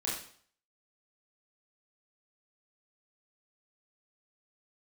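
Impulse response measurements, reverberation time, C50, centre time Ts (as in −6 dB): 0.55 s, 2.5 dB, 46 ms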